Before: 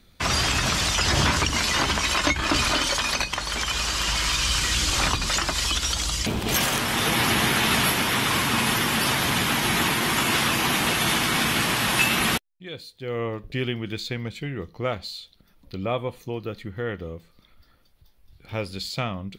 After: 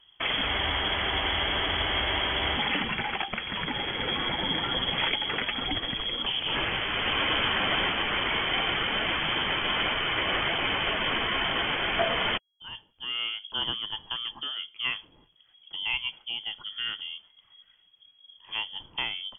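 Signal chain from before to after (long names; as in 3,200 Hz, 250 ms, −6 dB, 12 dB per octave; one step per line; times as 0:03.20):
voice inversion scrambler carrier 3,300 Hz
frozen spectrum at 0:00.48, 2.09 s
level −4 dB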